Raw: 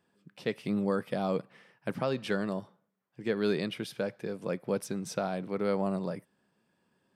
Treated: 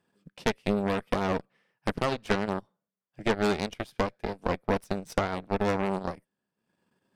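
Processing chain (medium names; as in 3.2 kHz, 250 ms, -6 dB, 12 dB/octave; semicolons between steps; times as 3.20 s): Chebyshev shaper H 6 -10 dB, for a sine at -16.5 dBFS; transient shaper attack +5 dB, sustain -11 dB; trim -1 dB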